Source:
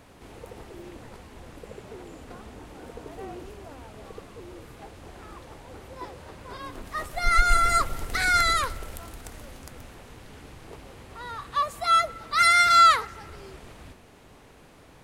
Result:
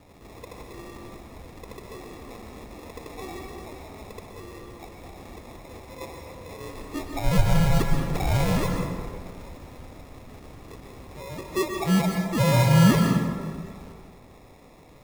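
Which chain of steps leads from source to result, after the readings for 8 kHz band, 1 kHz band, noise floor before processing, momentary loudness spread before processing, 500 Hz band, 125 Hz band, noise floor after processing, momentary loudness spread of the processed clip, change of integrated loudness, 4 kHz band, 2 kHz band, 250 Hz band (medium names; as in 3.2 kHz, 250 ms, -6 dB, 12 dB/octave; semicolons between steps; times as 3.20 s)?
-3.0 dB, -9.5 dB, -52 dBFS, 24 LU, +7.0 dB, +16.5 dB, -50 dBFS, 22 LU, -2.5 dB, -6.0 dB, -8.5 dB, +18.0 dB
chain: low-pass 2.1 kHz 12 dB/octave; sample-and-hold 29×; plate-style reverb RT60 1.7 s, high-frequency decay 0.5×, pre-delay 110 ms, DRR 2.5 dB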